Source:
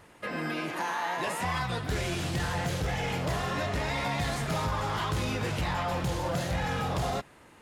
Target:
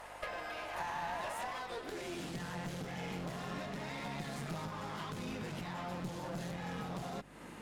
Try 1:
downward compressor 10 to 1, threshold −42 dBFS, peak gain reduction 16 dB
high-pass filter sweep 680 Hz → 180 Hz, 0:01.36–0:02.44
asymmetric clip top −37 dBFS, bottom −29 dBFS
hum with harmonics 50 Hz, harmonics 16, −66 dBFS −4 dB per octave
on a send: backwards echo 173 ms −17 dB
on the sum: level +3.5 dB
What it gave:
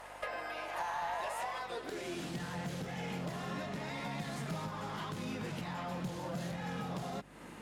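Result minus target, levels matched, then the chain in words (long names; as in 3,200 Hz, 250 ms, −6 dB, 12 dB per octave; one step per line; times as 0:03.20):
asymmetric clip: distortion −11 dB
downward compressor 10 to 1, threshold −42 dBFS, peak gain reduction 16 dB
high-pass filter sweep 680 Hz → 180 Hz, 0:01.36–0:02.44
asymmetric clip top −46 dBFS, bottom −29 dBFS
hum with harmonics 50 Hz, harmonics 16, −66 dBFS −4 dB per octave
on a send: backwards echo 173 ms −17 dB
on the sum: level +3.5 dB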